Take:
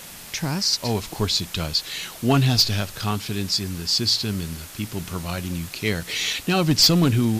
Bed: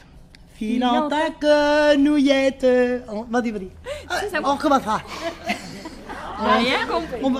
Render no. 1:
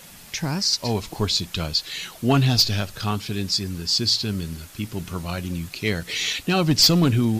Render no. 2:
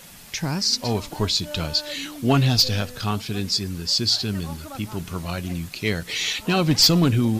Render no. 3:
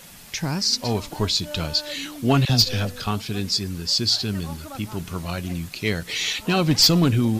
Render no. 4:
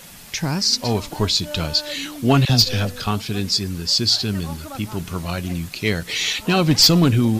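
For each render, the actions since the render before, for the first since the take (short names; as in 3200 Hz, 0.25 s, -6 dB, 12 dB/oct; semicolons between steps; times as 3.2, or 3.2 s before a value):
denoiser 6 dB, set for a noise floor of -40 dBFS
add bed -21.5 dB
2.45–3.07 dispersion lows, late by 46 ms, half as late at 710 Hz
gain +3 dB; limiter -3 dBFS, peak gain reduction 1 dB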